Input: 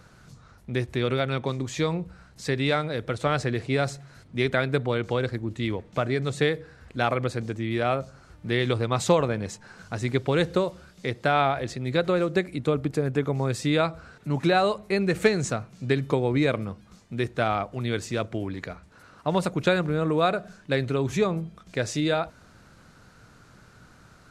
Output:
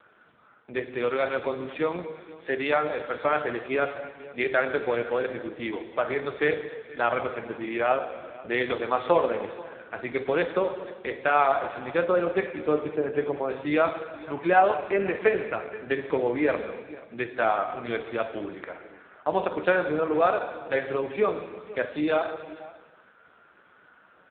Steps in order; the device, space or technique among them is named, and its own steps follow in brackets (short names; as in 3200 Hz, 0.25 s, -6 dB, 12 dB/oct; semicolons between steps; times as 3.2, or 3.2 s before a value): plate-style reverb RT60 1.4 s, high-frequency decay 0.95×, DRR 5 dB; 15.91–17.27 notch 770 Hz, Q 18; satellite phone (BPF 380–3400 Hz; echo 0.482 s -19.5 dB; gain +2.5 dB; AMR-NB 5.15 kbps 8000 Hz)